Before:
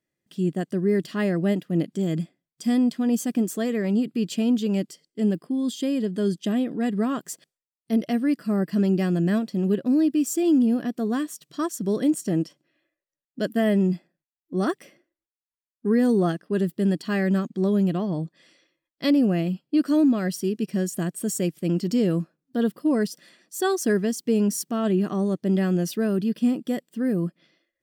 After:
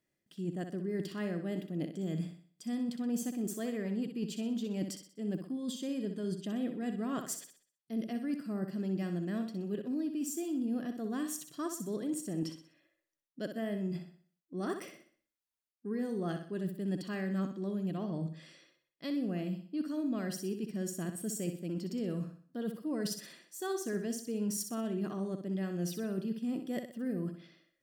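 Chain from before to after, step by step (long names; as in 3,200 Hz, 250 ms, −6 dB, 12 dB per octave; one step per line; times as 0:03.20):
reversed playback
downward compressor 5 to 1, threshold −35 dBFS, peak gain reduction 17 dB
reversed playback
flutter between parallel walls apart 10.7 metres, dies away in 0.47 s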